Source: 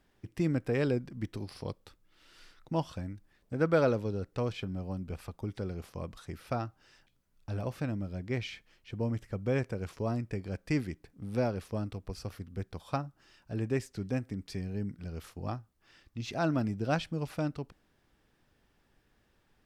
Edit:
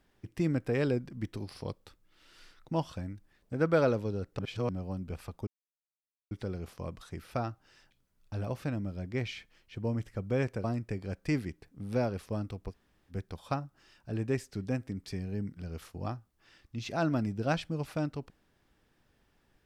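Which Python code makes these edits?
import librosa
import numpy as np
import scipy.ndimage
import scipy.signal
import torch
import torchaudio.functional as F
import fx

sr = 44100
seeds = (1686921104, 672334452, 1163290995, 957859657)

y = fx.edit(x, sr, fx.reverse_span(start_s=4.39, length_s=0.3),
    fx.insert_silence(at_s=5.47, length_s=0.84),
    fx.cut(start_s=9.8, length_s=0.26),
    fx.room_tone_fill(start_s=12.13, length_s=0.4, crossfade_s=0.06), tone=tone)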